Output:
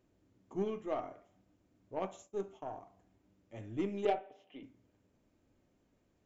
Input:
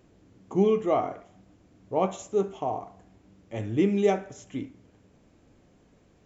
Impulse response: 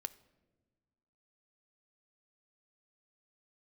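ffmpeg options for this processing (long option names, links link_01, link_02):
-filter_complex "[0:a]asettb=1/sr,asplit=3[link_01][link_02][link_03];[link_01]atrim=end=1.964[link_04];[link_02]atrim=start=1.96:end=2.75,asetpts=PTS-STARTPTS,afade=type=in:duration=0.004:curve=qsin,afade=type=out:start_time=0.786:duration=0.004:curve=qsin,agate=range=-33dB:threshold=-36dB:ratio=3:detection=peak[link_05];[link_03]atrim=start=2.746[link_06];[link_04][link_05]acrossfade=duration=0.004:curve1=hsin:curve2=qsin[link_07];[link_07][link_06]acrossfade=duration=0.004:curve1=qsin:curve2=hsin,asettb=1/sr,asplit=3[link_08][link_09][link_10];[link_08]atrim=end=4.054[link_11];[link_09]atrim=start=4.05:end=4.63,asetpts=PTS-STARTPTS,afade=type=in:duration=0.004:curve=qsin,afade=type=out:start_time=0.576:duration=0.004:curve=qsin,highpass=340,equalizer=frequency=450:width_type=q:width=4:gain=6,equalizer=frequency=740:width_type=q:width=4:gain=10,equalizer=frequency=1500:width_type=q:width=4:gain=-6,equalizer=frequency=2900:width_type=q:width=4:gain=9,lowpass=frequency=3700:width=0.5412,lowpass=frequency=3700:width=1.3066[link_12];[link_10]atrim=start=4.626[link_13];[link_11][link_12]acrossfade=duration=0.004:curve1=hsin:curve2=qsin[link_14];[link_14][link_13]acrossfade=duration=0.004:curve1=qsin:curve2=hsin[link_15];[1:a]atrim=start_sample=2205,atrim=end_sample=3087[link_16];[link_15][link_16]afir=irnorm=-1:irlink=0,aeval=exprs='0.266*(cos(1*acos(clip(val(0)/0.266,-1,1)))-cos(1*PI/2))+0.0299*(cos(3*acos(clip(val(0)/0.266,-1,1)))-cos(3*PI/2))+0.00596*(cos(8*acos(clip(val(0)/0.266,-1,1)))-cos(8*PI/2))':channel_layout=same,volume=-7.5dB"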